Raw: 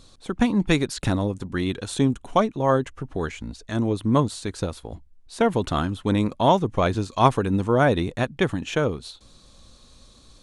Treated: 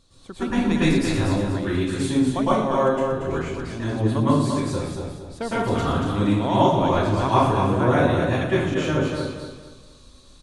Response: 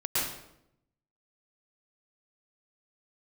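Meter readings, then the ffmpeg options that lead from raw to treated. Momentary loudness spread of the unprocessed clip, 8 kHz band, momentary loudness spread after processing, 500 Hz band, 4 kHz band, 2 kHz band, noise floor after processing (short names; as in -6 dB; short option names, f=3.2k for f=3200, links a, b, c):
12 LU, +0.5 dB, 10 LU, +1.5 dB, +0.5 dB, +1.0 dB, -49 dBFS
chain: -filter_complex "[0:a]aecho=1:1:233|466|699|932:0.501|0.16|0.0513|0.0164[a];[1:a]atrim=start_sample=2205[b];[a][b]afir=irnorm=-1:irlink=0,volume=-8.5dB"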